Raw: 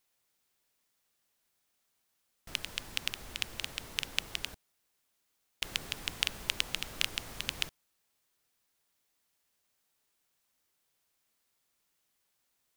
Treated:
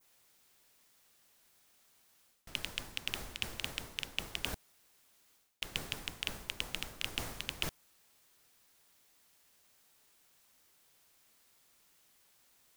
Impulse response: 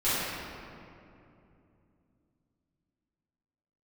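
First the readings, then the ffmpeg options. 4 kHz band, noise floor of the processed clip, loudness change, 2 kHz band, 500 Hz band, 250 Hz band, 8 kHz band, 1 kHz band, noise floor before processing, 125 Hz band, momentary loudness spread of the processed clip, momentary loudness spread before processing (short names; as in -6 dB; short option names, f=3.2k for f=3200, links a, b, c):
-4.0 dB, -69 dBFS, -4.0 dB, -3.5 dB, +1.0 dB, +1.0 dB, -4.5 dB, -1.0 dB, -78 dBFS, +1.5 dB, 3 LU, 6 LU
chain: -af "adynamicequalizer=threshold=0.00398:dfrequency=3500:dqfactor=0.81:tfrequency=3500:tqfactor=0.81:attack=5:release=100:ratio=0.375:range=1.5:mode=cutabove:tftype=bell,areverse,acompressor=threshold=-43dB:ratio=16,areverse,volume=10dB"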